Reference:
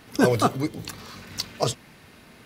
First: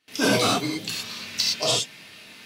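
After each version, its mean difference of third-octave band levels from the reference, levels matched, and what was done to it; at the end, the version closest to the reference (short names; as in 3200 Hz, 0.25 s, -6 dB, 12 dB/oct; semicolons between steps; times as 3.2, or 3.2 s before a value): 7.5 dB: high shelf 7800 Hz +5.5 dB; non-linear reverb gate 0.14 s flat, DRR -6 dB; gate with hold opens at -36 dBFS; weighting filter D; gain -8 dB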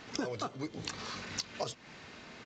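10.0 dB: downsampling 16000 Hz; in parallel at -10 dB: soft clip -18 dBFS, distortion -10 dB; on the sum: low shelf 220 Hz -8 dB; compressor 16:1, threshold -32 dBFS, peak gain reduction 18.5 dB; gain -1 dB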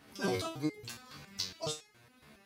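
5.0 dB: HPF 41 Hz; dynamic EQ 4100 Hz, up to +8 dB, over -43 dBFS, Q 0.71; in parallel at +1.5 dB: limiter -15.5 dBFS, peak gain reduction 11 dB; on the sum: stepped resonator 7.2 Hz 72–420 Hz; gain -7 dB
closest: third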